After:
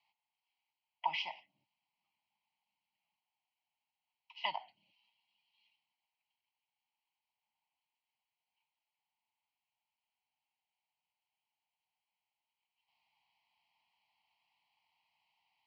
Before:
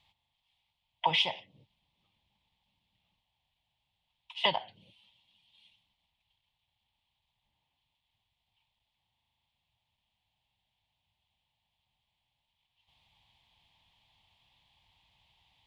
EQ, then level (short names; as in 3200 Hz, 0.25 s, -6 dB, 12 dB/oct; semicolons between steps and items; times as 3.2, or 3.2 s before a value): speaker cabinet 420–4800 Hz, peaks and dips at 450 Hz -8 dB, 1200 Hz -6 dB, 2700 Hz -4 dB; fixed phaser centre 2400 Hz, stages 8; -4.0 dB